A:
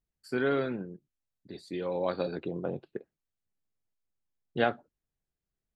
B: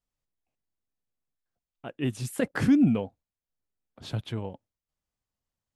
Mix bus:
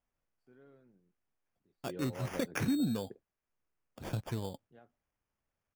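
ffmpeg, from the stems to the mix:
-filter_complex "[0:a]lowshelf=f=140:g=9.5,highshelf=f=2200:g=-11,adelay=150,volume=0.316[s0];[1:a]acrusher=samples=11:mix=1:aa=0.000001,volume=1.06,asplit=2[s1][s2];[s2]apad=whole_len=260390[s3];[s0][s3]sidechaingate=range=0.0708:threshold=0.00224:ratio=16:detection=peak[s4];[s4][s1]amix=inputs=2:normalize=0,acompressor=threshold=0.02:ratio=2.5"

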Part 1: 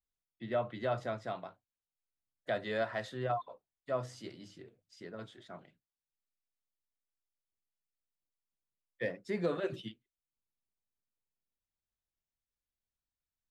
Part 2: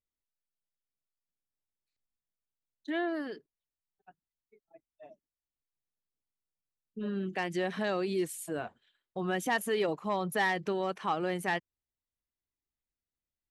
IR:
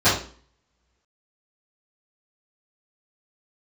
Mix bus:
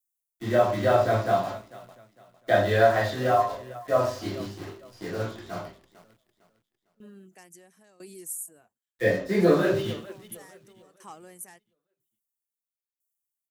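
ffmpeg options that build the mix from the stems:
-filter_complex "[0:a]acrusher=bits=9:dc=4:mix=0:aa=0.000001,volume=1.33,asplit=4[s0][s1][s2][s3];[s1]volume=0.266[s4];[s2]volume=0.355[s5];[1:a]aexciter=amount=14.7:drive=6.7:freq=5900,aeval=exprs='val(0)*pow(10,-19*if(lt(mod(1*n/s,1),2*abs(1)/1000),1-mod(1*n/s,1)/(2*abs(1)/1000),(mod(1*n/s,1)-2*abs(1)/1000)/(1-2*abs(1)/1000))/20)':c=same,volume=0.266[s6];[s3]apad=whole_len=595363[s7];[s6][s7]sidechaincompress=threshold=0.00355:ratio=8:attack=41:release=705[s8];[2:a]atrim=start_sample=2205[s9];[s4][s9]afir=irnorm=-1:irlink=0[s10];[s5]aecho=0:1:454|908|1362|1816|2270:1|0.32|0.102|0.0328|0.0105[s11];[s0][s8][s10][s11]amix=inputs=4:normalize=0"

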